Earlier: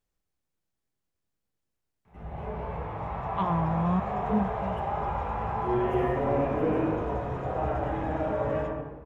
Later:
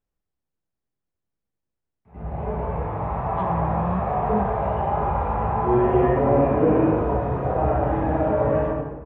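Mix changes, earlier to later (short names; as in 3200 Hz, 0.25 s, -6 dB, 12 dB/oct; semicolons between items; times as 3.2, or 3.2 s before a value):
background: send +8.5 dB; master: add high shelf 2600 Hz -11 dB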